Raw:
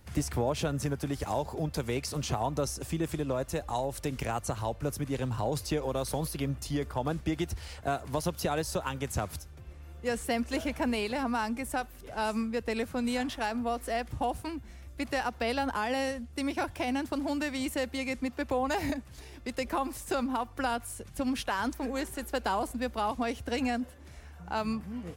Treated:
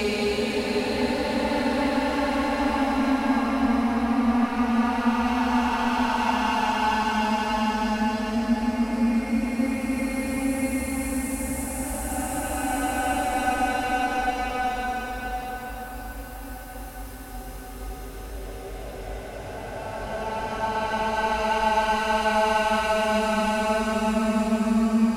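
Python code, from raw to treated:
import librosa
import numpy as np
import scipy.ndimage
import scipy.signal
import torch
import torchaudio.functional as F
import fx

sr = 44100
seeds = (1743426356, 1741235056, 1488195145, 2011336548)

p1 = fx.hpss(x, sr, part='percussive', gain_db=-5)
p2 = fx.rev_schroeder(p1, sr, rt60_s=1.9, comb_ms=32, drr_db=16.5)
p3 = fx.fold_sine(p2, sr, drive_db=10, ceiling_db=-19.0)
p4 = p2 + F.gain(torch.from_numpy(p3), -11.0).numpy()
p5 = fx.paulstretch(p4, sr, seeds[0], factor=19.0, window_s=0.25, from_s=11.06)
y = F.gain(torch.from_numpy(p5), 3.5).numpy()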